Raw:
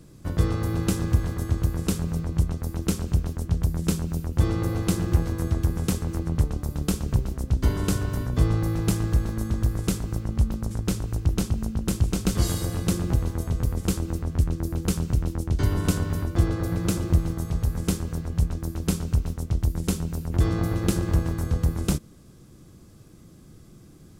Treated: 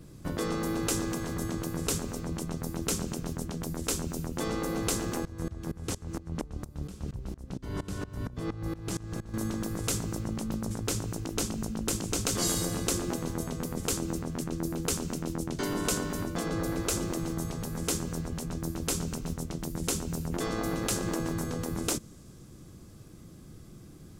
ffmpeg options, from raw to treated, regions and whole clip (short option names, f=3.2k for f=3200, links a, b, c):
-filter_complex "[0:a]asettb=1/sr,asplit=3[a][b][c];[a]atrim=end=5.254[d];[b]atrim=start=5.25:end=9.34,asetpts=PTS-STARTPTS,afade=t=in:d=0.004:c=qsin,afade=t=out:st=4.086:d=0.004:c=qsin,highshelf=f=11k:g=-9.5,aeval=exprs='val(0)*pow(10,-23*if(lt(mod(-4.3*n/s,1),2*abs(-4.3)/1000),1-mod(-4.3*n/s,1)/(2*abs(-4.3)/1000),(mod(-4.3*n/s,1)-2*abs(-4.3)/1000)/(1-2*abs(-4.3)/1000))/20)':c=same[e];[c]atrim=start=9.336[f];[d][e]acrossfade=d=0.004:c1=hsin:c2=qsin[g];[g][f]acrossfade=d=0.004:c1=qsin:c2=hsin,afftfilt=real='re*lt(hypot(re,im),0.316)':imag='im*lt(hypot(re,im),0.316)':win_size=1024:overlap=0.75,adynamicequalizer=threshold=0.00355:dfrequency=6900:dqfactor=1.4:tfrequency=6900:tqfactor=1.4:attack=5:release=100:ratio=0.375:range=3:mode=boostabove:tftype=bell"